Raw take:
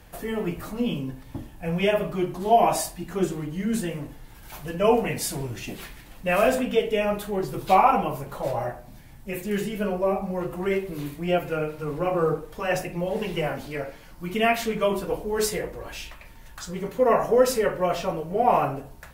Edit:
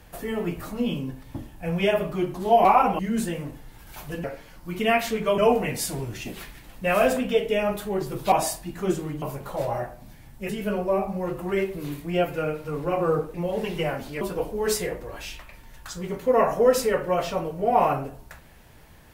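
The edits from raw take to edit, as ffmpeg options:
-filter_complex "[0:a]asplit=10[s0][s1][s2][s3][s4][s5][s6][s7][s8][s9];[s0]atrim=end=2.652[s10];[s1]atrim=start=7.738:end=8.082[s11];[s2]atrim=start=3.548:end=4.802[s12];[s3]atrim=start=13.788:end=14.932[s13];[s4]atrim=start=4.798:end=7.742[s14];[s5]atrim=start=2.648:end=3.552[s15];[s6]atrim=start=8.078:end=9.352[s16];[s7]atrim=start=9.628:end=12.482[s17];[s8]atrim=start=12.918:end=13.792[s18];[s9]atrim=start=14.928[s19];[s10][s11]acrossfade=d=0.004:c1=hsin:c2=hsin[s20];[s20][s12]acrossfade=d=0.004:c1=hsin:c2=hsin[s21];[s21][s13]acrossfade=d=0.004:c1=hsin:c2=hsin[s22];[s22][s14]acrossfade=d=0.004:c1=hsin:c2=hsin[s23];[s23][s15]acrossfade=d=0.004:c1=hsin:c2=hsin[s24];[s24][s16]acrossfade=d=0.004:c1=hsin:c2=hsin[s25];[s25][s17]acrossfade=d=0.004:c1=hsin:c2=hsin[s26];[s26][s18]acrossfade=d=0.004:c1=hsin:c2=hsin[s27];[s27][s19]acrossfade=d=0.004:c1=hsin:c2=hsin"

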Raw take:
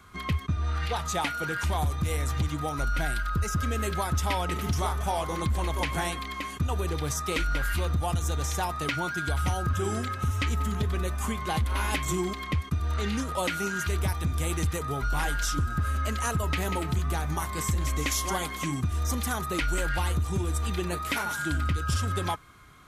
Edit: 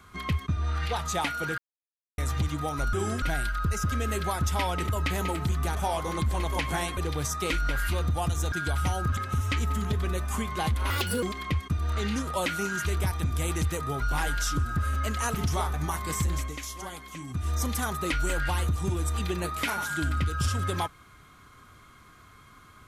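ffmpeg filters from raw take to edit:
-filter_complex "[0:a]asplit=16[s0][s1][s2][s3][s4][s5][s6][s7][s8][s9][s10][s11][s12][s13][s14][s15];[s0]atrim=end=1.58,asetpts=PTS-STARTPTS,afade=t=out:st=1.576:d=0.004:c=hsin[s16];[s1]atrim=start=1.58:end=2.18,asetpts=PTS-STARTPTS,volume=0[s17];[s2]atrim=start=2.18:end=2.932,asetpts=PTS-STARTPTS,afade=t=in:d=0.004:c=hsin[s18];[s3]atrim=start=9.778:end=10.072[s19];[s4]atrim=start=2.928:end=4.602[s20];[s5]atrim=start=16.358:end=17.222[s21];[s6]atrim=start=4.988:end=6.212[s22];[s7]atrim=start=6.828:end=8.382[s23];[s8]atrim=start=9.128:end=9.782[s24];[s9]atrim=start=10.068:end=11.804[s25];[s10]atrim=start=11.8:end=12.24,asetpts=PTS-STARTPTS,asetrate=59535,aresample=44100,atrim=end_sample=14373,asetpts=PTS-STARTPTS[s26];[s11]atrim=start=12.236:end=16.362[s27];[s12]atrim=start=4.598:end=4.992[s28];[s13]atrim=start=17.218:end=18.02,asetpts=PTS-STARTPTS,afade=t=out:st=0.592:d=0.21:silence=0.334965[s29];[s14]atrim=start=18.02:end=18.75,asetpts=PTS-STARTPTS,volume=0.335[s30];[s15]atrim=start=18.75,asetpts=PTS-STARTPTS,afade=t=in:d=0.21:silence=0.334965[s31];[s16][s17][s18]concat=n=3:v=0:a=1[s32];[s32][s19]acrossfade=d=0.004:c1=hsin:c2=hsin[s33];[s33][s20]acrossfade=d=0.004:c1=hsin:c2=hsin[s34];[s34][s21]acrossfade=d=0.004:c1=hsin:c2=hsin[s35];[s35][s22]acrossfade=d=0.004:c1=hsin:c2=hsin[s36];[s36][s23]acrossfade=d=0.004:c1=hsin:c2=hsin[s37];[s37][s24]acrossfade=d=0.004:c1=hsin:c2=hsin[s38];[s38][s25]acrossfade=d=0.004:c1=hsin:c2=hsin[s39];[s39][s26]acrossfade=d=0.004:c1=hsin:c2=hsin[s40];[s40][s27]acrossfade=d=0.004:c1=hsin:c2=hsin[s41];[s41][s28]acrossfade=d=0.004:c1=hsin:c2=hsin[s42];[s29][s30][s31]concat=n=3:v=0:a=1[s43];[s42][s43]acrossfade=d=0.004:c1=hsin:c2=hsin"

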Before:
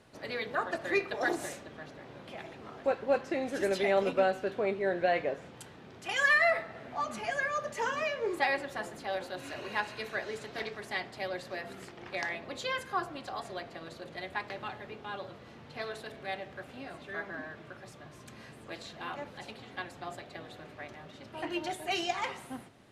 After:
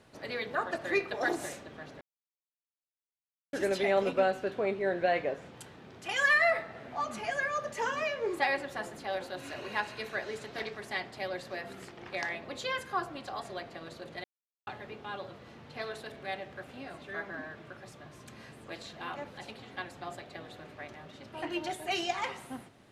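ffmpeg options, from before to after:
-filter_complex "[0:a]asplit=5[s0][s1][s2][s3][s4];[s0]atrim=end=2.01,asetpts=PTS-STARTPTS,afade=t=out:st=2.006:d=0.004:c=hsin[s5];[s1]atrim=start=2.01:end=3.53,asetpts=PTS-STARTPTS,volume=0[s6];[s2]atrim=start=3.53:end=14.24,asetpts=PTS-STARTPTS,afade=t=in:d=0.004:c=hsin,afade=t=out:st=10.706:d=0.004:c=hsin[s7];[s3]atrim=start=14.24:end=14.67,asetpts=PTS-STARTPTS,volume=0[s8];[s4]atrim=start=14.67,asetpts=PTS-STARTPTS,afade=t=in:d=0.004:c=hsin[s9];[s5][s6][s7][s8][s9]concat=n=5:v=0:a=1"

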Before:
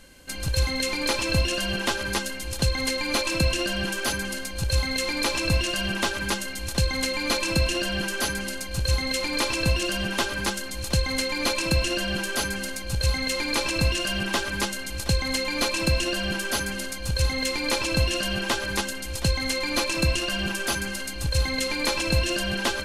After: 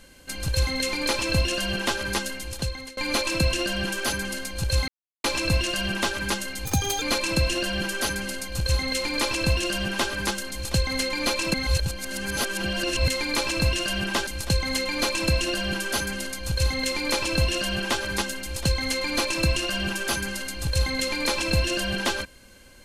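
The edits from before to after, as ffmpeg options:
-filter_complex "[0:a]asplit=9[s0][s1][s2][s3][s4][s5][s6][s7][s8];[s0]atrim=end=2.97,asetpts=PTS-STARTPTS,afade=t=out:st=2.33:d=0.64:silence=0.0707946[s9];[s1]atrim=start=2.97:end=4.88,asetpts=PTS-STARTPTS,afade=t=in:d=0.004:c=hsin:silence=0.0707946,afade=t=out:st=1.906:d=0.004:c=hsin[s10];[s2]atrim=start=4.88:end=5.24,asetpts=PTS-STARTPTS,volume=0[s11];[s3]atrim=start=5.24:end=6.654,asetpts=PTS-STARTPTS,afade=t=in:d=0.004:c=hsin[s12];[s4]atrim=start=6.65:end=7.21,asetpts=PTS-STARTPTS,asetrate=67032,aresample=44100,atrim=end_sample=16247,asetpts=PTS-STARTPTS[s13];[s5]atrim=start=7.206:end=11.732[s14];[s6]atrim=start=11.728:end=13.272,asetpts=PTS-STARTPTS,areverse[s15];[s7]atrim=start=13.268:end=14.462[s16];[s8]atrim=start=14.858[s17];[s9][s10][s11][s12]concat=n=4:v=0:a=1[s18];[s18][s13]acrossfade=d=0.004:c1=hsin:c2=hsin[s19];[s19][s14]acrossfade=d=0.004:c1=hsin:c2=hsin[s20];[s20][s15]acrossfade=d=0.004:c1=hsin:c2=hsin[s21];[s21][s16]acrossfade=d=0.004:c1=hsin:c2=hsin[s22];[s22][s17]acrossfade=d=0.004:c1=hsin:c2=hsin"

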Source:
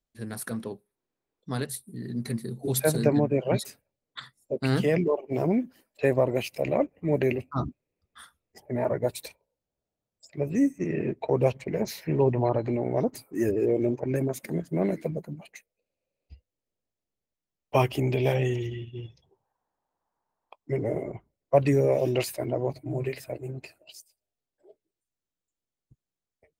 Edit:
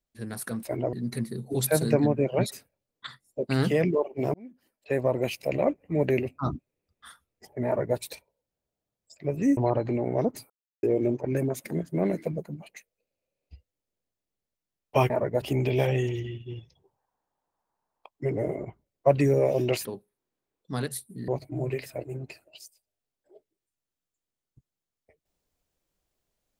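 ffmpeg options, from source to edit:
-filter_complex "[0:a]asplit=11[s0][s1][s2][s3][s4][s5][s6][s7][s8][s9][s10];[s0]atrim=end=0.632[s11];[s1]atrim=start=22.318:end=22.622[s12];[s2]atrim=start=2.058:end=5.47,asetpts=PTS-STARTPTS,afade=t=out:st=3.408:d=0.004:c=hsin[s13];[s3]atrim=start=5.47:end=10.702,asetpts=PTS-STARTPTS,afade=t=in:d=0.94[s14];[s4]atrim=start=12.358:end=13.29,asetpts=PTS-STARTPTS,afade=t=out:st=0.928:d=0.004:c=hsin[s15];[s5]atrim=start=13.29:end=13.62,asetpts=PTS-STARTPTS,volume=0[s16];[s6]atrim=start=13.62:end=17.892,asetpts=PTS-STARTPTS,afade=t=in:d=0.004:c=hsin[s17];[s7]atrim=start=8.788:end=9.112[s18];[s8]atrim=start=17.888:end=22.322[s19];[s9]atrim=start=0.628:end=2.062[s20];[s10]atrim=start=22.618[s21];[s11][s12]acrossfade=d=0.004:c1=hsin:c2=hsin[s22];[s13][s14]concat=n=2:v=0:a=1[s23];[s22][s23]acrossfade=d=0.004:c1=hsin:c2=hsin[s24];[s15][s16][s17]concat=n=3:v=0:a=1[s25];[s24][s25]acrossfade=d=0.004:c1=hsin:c2=hsin[s26];[s26][s18]acrossfade=d=0.004:c1=hsin:c2=hsin[s27];[s27][s19]acrossfade=d=0.004:c1=hsin:c2=hsin[s28];[s28][s20]acrossfade=d=0.004:c1=hsin:c2=hsin[s29];[s29][s21]acrossfade=d=0.004:c1=hsin:c2=hsin"

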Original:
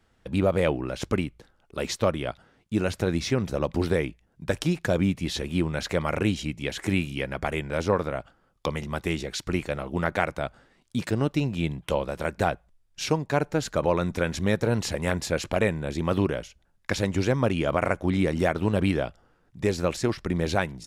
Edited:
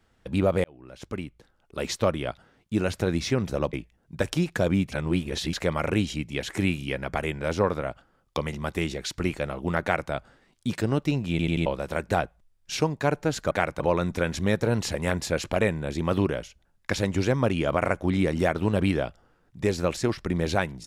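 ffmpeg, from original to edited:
-filter_complex "[0:a]asplit=11[s0][s1][s2][s3][s4][s5][s6][s7][s8][s9][s10];[s0]atrim=end=0.64,asetpts=PTS-STARTPTS,afade=t=out:st=0.636:d=0.004:c=hsin[s11];[s1]atrim=start=0.64:end=3.732,asetpts=PTS-STARTPTS,afade=t=in:d=1.26[s12];[s2]atrim=start=4.018:end=5.212[s13];[s3]atrim=start=5.208:end=5.822,asetpts=PTS-STARTPTS,areverse[s14];[s4]atrim=start=5.818:end=11.682[s15];[s5]atrim=start=11.588:end=11.682[s16];[s6]atrim=start=11.588:end=11.682[s17];[s7]atrim=start=11.588:end=11.682[s18];[s8]atrim=start=11.948:end=13.802[s19];[s9]atrim=start=10.108:end=10.402[s20];[s10]atrim=start=13.798[s21];[s11][s12]concat=n=2:v=0:a=1[s22];[s22][s13]acrossfade=d=0.004:c1=hsin:c2=hsin[s23];[s23][s14]acrossfade=d=0.004:c1=hsin:c2=hsin[s24];[s24][s15]acrossfade=d=0.004:c1=hsin:c2=hsin[s25];[s25][s16]acrossfade=d=0.004:c1=hsin:c2=hsin[s26];[s26][s17]acrossfade=d=0.004:c1=hsin:c2=hsin[s27];[s27][s18]acrossfade=d=0.004:c1=hsin:c2=hsin[s28];[s28][s19]acrossfade=d=0.004:c1=hsin:c2=hsin[s29];[s29][s20]acrossfade=d=0.004:c1=hsin:c2=hsin[s30];[s30][s21]acrossfade=d=0.004:c1=hsin:c2=hsin"

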